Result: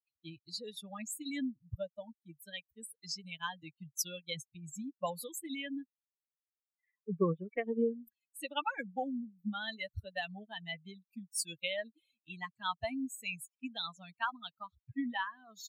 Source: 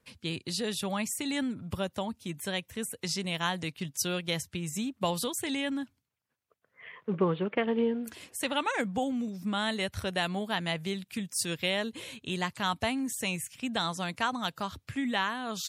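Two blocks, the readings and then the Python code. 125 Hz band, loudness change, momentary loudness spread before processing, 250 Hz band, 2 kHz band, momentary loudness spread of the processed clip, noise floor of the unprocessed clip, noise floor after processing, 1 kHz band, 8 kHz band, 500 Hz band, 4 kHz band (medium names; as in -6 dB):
-9.0 dB, -7.0 dB, 7 LU, -8.0 dB, -7.5 dB, 13 LU, -77 dBFS, under -85 dBFS, -7.0 dB, -6.5 dB, -6.5 dB, -8.5 dB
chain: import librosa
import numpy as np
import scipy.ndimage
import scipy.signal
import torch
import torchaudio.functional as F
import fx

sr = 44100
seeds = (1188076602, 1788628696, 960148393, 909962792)

y = fx.bin_expand(x, sr, power=3.0)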